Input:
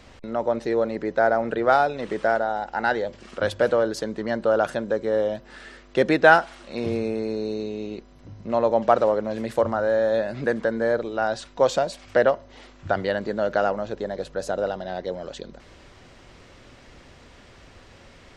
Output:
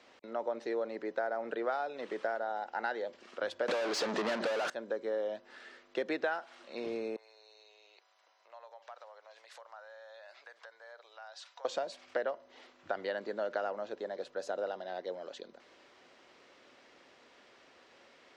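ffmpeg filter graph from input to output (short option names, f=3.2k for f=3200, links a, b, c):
-filter_complex "[0:a]asettb=1/sr,asplit=3[a][b][c];[a]atrim=end=3.684[d];[b]atrim=start=3.68:end=4.7,asetpts=PTS-STARTPTS,afade=t=in:d=0.004:c=qsin,afade=t=out:st=1.016:d=0.004:c=qsin,bass=f=250:g=11,treble=f=4k:g=3,asplit=2[e][f];[f]highpass=f=720:p=1,volume=37dB,asoftclip=type=tanh:threshold=-7.5dB[g];[e][g]amix=inputs=2:normalize=0,lowpass=f=4.3k:p=1,volume=-6dB[h];[c]atrim=start=4.696[i];[d][h]acrossfade=d=0.004:c1=hsin:c2=qsin[j];[j][i]acrossfade=d=0.004:c1=qsin:c2=hsin,asettb=1/sr,asplit=3[k][l][m];[k]atrim=end=7.164[n];[l]atrim=start=7.16:end=11.65,asetpts=PTS-STARTPTS,afade=t=in:d=0.004:c=qsin,afade=t=out:st=4.486:d=0.004:c=qsin,adynamicequalizer=threshold=0.00447:dfrequency=5200:dqfactor=0.76:tfrequency=5200:tqfactor=0.76:attack=5:release=100:ratio=0.375:range=3:mode=boostabove:tftype=bell,acompressor=threshold=-35dB:ratio=5:attack=3.2:release=140:knee=1:detection=peak,highpass=f=700:w=0.5412,highpass=f=700:w=1.3066[o];[m]atrim=start=11.646[p];[n][o]acrossfade=d=0.004:c1=hsin:c2=qsin[q];[q][p]acrossfade=d=0.004:c1=qsin:c2=hsin,highpass=f=150:p=1,acrossover=split=250 7000:gain=0.1 1 0.224[r][s][t];[r][s][t]amix=inputs=3:normalize=0,acompressor=threshold=-21dB:ratio=10,volume=-8.5dB"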